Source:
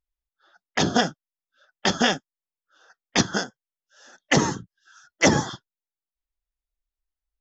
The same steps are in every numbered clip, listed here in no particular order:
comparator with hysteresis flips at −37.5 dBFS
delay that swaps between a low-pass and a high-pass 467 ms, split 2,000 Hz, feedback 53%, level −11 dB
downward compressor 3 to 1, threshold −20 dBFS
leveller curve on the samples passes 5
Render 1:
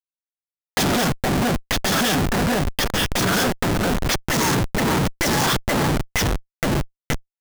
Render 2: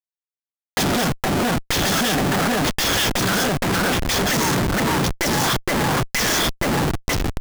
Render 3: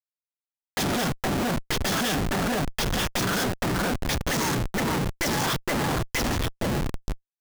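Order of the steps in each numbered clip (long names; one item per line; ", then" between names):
delay that swaps between a low-pass and a high-pass, then leveller curve on the samples, then comparator with hysteresis, then downward compressor
leveller curve on the samples, then delay that swaps between a low-pass and a high-pass, then comparator with hysteresis, then downward compressor
leveller curve on the samples, then downward compressor, then delay that swaps between a low-pass and a high-pass, then comparator with hysteresis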